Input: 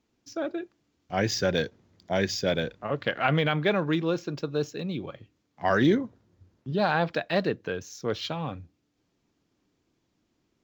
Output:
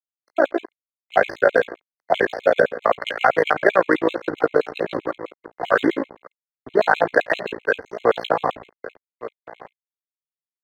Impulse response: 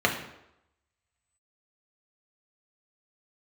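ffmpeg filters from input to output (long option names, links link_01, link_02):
-filter_complex "[0:a]equalizer=frequency=4500:width=0.36:gain=2.5,asplit=2[link_01][link_02];[1:a]atrim=start_sample=2205,afade=type=out:start_time=0.19:duration=0.01,atrim=end_sample=8820[link_03];[link_02][link_03]afir=irnorm=-1:irlink=0,volume=-22dB[link_04];[link_01][link_04]amix=inputs=2:normalize=0,acrossover=split=230|2600[link_05][link_06][link_07];[link_05]acompressor=threshold=-37dB:ratio=4[link_08];[link_06]acompressor=threshold=-24dB:ratio=4[link_09];[link_07]acompressor=threshold=-43dB:ratio=4[link_10];[link_08][link_09][link_10]amix=inputs=3:normalize=0,asplit=2[link_11][link_12];[link_12]adelay=1166,volume=-12dB,highshelf=frequency=4000:gain=-26.2[link_13];[link_11][link_13]amix=inputs=2:normalize=0,tremolo=f=57:d=0.788,adynamicsmooth=sensitivity=6:basefreq=1900,aeval=exprs='sgn(val(0))*max(abs(val(0))-0.00422,0)':channel_layout=same,acrossover=split=390 3200:gain=0.141 1 0.2[link_14][link_15][link_16];[link_14][link_15][link_16]amix=inputs=3:normalize=0,alimiter=level_in=21dB:limit=-1dB:release=50:level=0:latency=1,afftfilt=real='re*gt(sin(2*PI*7.7*pts/sr)*(1-2*mod(floor(b*sr/1024/2100),2)),0)':imag='im*gt(sin(2*PI*7.7*pts/sr)*(1-2*mod(floor(b*sr/1024/2100),2)),0)':win_size=1024:overlap=0.75,volume=-1dB"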